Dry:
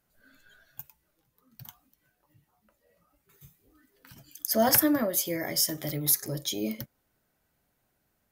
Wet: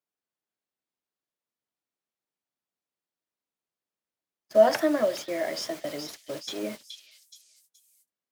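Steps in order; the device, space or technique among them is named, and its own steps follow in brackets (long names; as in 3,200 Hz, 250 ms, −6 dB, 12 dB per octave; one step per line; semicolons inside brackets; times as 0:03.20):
horn gramophone (band-pass filter 230–3,800 Hz; parametric band 640 Hz +12 dB 0.22 octaves; tape wow and flutter; pink noise bed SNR 12 dB)
high-pass filter 210 Hz 12 dB per octave
noise gate −36 dBFS, range −50 dB
echo through a band-pass that steps 423 ms, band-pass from 4,000 Hz, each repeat 0.7 octaves, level −5 dB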